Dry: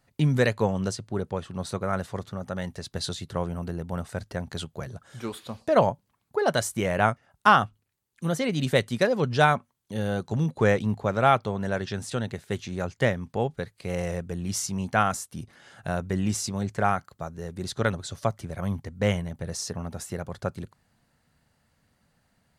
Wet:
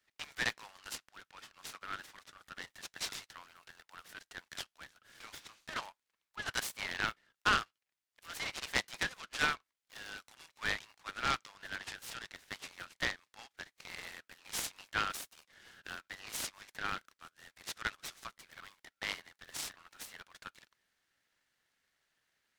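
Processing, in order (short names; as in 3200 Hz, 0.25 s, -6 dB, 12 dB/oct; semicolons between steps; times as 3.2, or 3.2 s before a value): inverse Chebyshev high-pass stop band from 280 Hz, stop band 80 dB; tilt -2.5 dB/oct; noise-modulated delay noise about 1500 Hz, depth 0.048 ms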